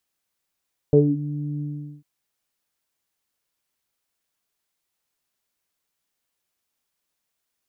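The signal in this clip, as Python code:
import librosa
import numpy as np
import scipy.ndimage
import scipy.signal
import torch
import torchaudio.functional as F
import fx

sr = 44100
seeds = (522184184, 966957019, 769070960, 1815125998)

y = fx.sub_voice(sr, note=50, wave='saw', cutoff_hz=250.0, q=6.2, env_oct=1.0, env_s=0.24, attack_ms=1.8, decay_s=0.2, sustain_db=-13.5, release_s=0.42, note_s=0.68, slope=24)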